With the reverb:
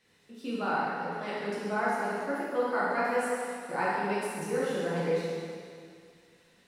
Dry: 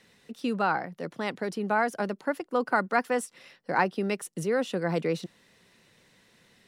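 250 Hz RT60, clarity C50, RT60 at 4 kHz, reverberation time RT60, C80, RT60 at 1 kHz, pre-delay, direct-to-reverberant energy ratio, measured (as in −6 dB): 2.2 s, −3.5 dB, 2.1 s, 2.2 s, −1.0 dB, 2.3 s, 6 ms, −9.5 dB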